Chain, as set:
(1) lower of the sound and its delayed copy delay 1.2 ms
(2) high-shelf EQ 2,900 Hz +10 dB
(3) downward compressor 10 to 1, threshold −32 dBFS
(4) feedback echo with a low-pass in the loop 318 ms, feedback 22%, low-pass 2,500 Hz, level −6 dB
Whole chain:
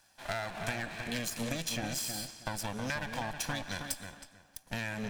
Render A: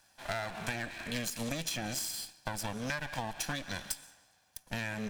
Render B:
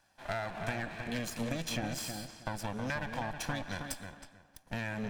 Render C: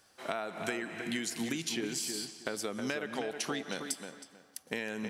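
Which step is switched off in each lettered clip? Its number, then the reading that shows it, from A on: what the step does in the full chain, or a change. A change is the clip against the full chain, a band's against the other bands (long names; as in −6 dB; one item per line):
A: 4, echo-to-direct ratio −7.5 dB to none audible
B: 2, 8 kHz band −6.0 dB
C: 1, 125 Hz band −8.0 dB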